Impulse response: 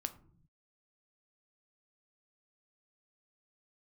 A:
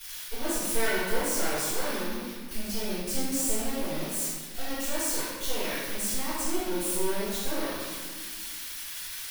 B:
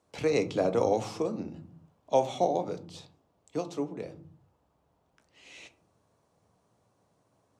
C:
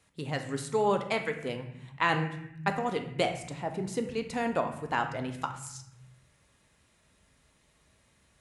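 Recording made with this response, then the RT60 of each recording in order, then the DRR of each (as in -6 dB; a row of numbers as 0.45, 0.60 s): B; 1.6, 0.55, 0.75 s; -18.0, 8.5, 5.5 dB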